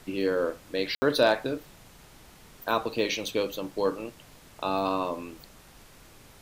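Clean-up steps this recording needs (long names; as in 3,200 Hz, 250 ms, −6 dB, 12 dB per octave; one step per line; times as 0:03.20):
clipped peaks rebuilt −10 dBFS
ambience match 0:00.95–0:01.02
broadband denoise 21 dB, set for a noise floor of −53 dBFS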